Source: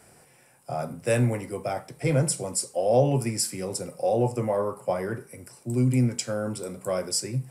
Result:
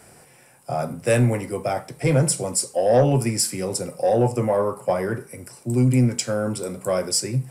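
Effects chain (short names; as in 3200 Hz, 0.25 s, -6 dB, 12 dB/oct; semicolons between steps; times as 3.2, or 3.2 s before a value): soft clip -13.5 dBFS, distortion -22 dB; gain +5.5 dB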